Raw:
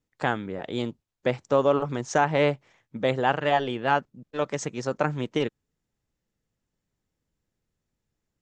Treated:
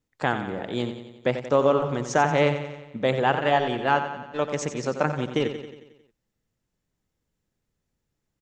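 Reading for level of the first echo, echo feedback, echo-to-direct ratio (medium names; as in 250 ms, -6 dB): -9.5 dB, 57%, -8.0 dB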